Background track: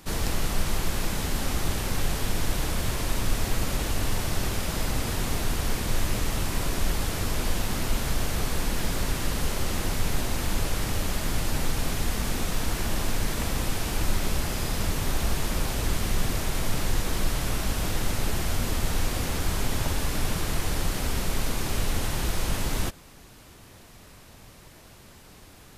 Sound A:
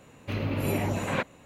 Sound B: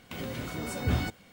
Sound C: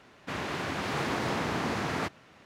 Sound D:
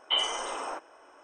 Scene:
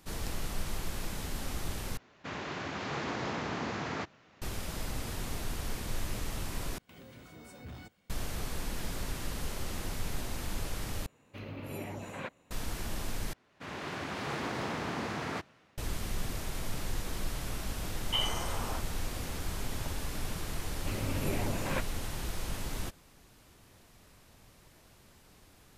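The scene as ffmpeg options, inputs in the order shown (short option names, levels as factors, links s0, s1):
-filter_complex "[3:a]asplit=2[s0][s1];[1:a]asplit=2[s2][s3];[0:a]volume=0.335[s4];[s0]aresample=16000,aresample=44100[s5];[2:a]asoftclip=type=tanh:threshold=0.0531[s6];[s2]lowshelf=f=180:g=-3.5[s7];[s1]dynaudnorm=f=140:g=5:m=2.24[s8];[s4]asplit=5[s9][s10][s11][s12][s13];[s9]atrim=end=1.974[s14];[s5]atrim=end=2.45,asetpts=PTS-STARTPTS,volume=0.562[s15];[s10]atrim=start=4.416:end=6.784[s16];[s6]atrim=end=1.32,asetpts=PTS-STARTPTS,volume=0.178[s17];[s11]atrim=start=8.096:end=11.064[s18];[s7]atrim=end=1.45,asetpts=PTS-STARTPTS,volume=0.266[s19];[s12]atrim=start=12.506:end=13.334[s20];[s8]atrim=end=2.45,asetpts=PTS-STARTPTS,volume=0.251[s21];[s13]atrim=start=15.776[s22];[4:a]atrim=end=1.23,asetpts=PTS-STARTPTS,volume=0.562,afade=t=in:d=0.004:c=hsin,afade=t=out:st=1.226:d=0.004:c=hsin,adelay=18020[s23];[s3]atrim=end=1.45,asetpts=PTS-STARTPTS,volume=0.473,afade=t=in:d=0.004:c=hsin,afade=t=out:st=1.446:d=0.004:c=hsin,adelay=20580[s24];[s14][s15]acrossfade=d=0.004:c1=hsin:c2=hsin[s25];[s25][s16]acrossfade=d=0.004:c1=hsin:c2=hsin[s26];[s26][s17]acrossfade=d=0.004:c1=hsin:c2=hsin[s27];[s27][s18]acrossfade=d=0.004:c1=hsin:c2=hsin[s28];[s28][s19]acrossfade=d=0.004:c1=hsin:c2=hsin[s29];[s29][s20]acrossfade=d=0.004:c1=hsin:c2=hsin[s30];[s30][s21]acrossfade=d=0.004:c1=hsin:c2=hsin[s31];[s31][s22]acrossfade=d=0.004:c1=hsin:c2=hsin[s32];[s32][s23][s24]amix=inputs=3:normalize=0"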